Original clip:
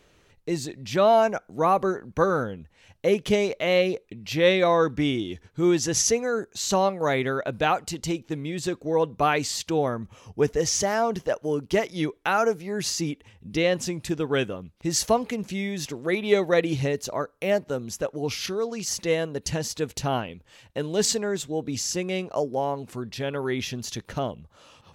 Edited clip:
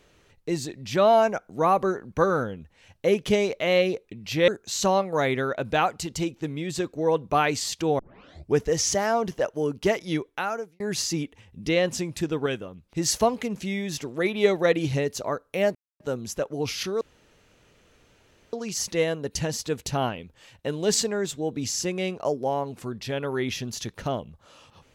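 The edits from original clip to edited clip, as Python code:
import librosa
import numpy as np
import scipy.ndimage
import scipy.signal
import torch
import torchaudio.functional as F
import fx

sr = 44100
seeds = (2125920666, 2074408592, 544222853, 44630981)

y = fx.edit(x, sr, fx.cut(start_s=4.48, length_s=1.88),
    fx.tape_start(start_s=9.87, length_s=0.54),
    fx.fade_out_span(start_s=12.01, length_s=0.67),
    fx.clip_gain(start_s=14.34, length_s=0.37, db=-4.5),
    fx.insert_silence(at_s=17.63, length_s=0.25),
    fx.insert_room_tone(at_s=18.64, length_s=1.52), tone=tone)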